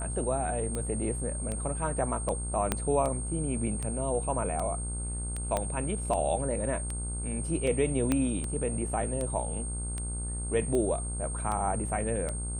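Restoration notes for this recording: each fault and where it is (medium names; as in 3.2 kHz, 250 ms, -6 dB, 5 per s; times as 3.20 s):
buzz 60 Hz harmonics 26 -35 dBFS
tick 78 rpm -21 dBFS
whine 8.6 kHz -37 dBFS
2.72 s: pop -11 dBFS
5.57 s: pop -15 dBFS
8.12 s: pop -13 dBFS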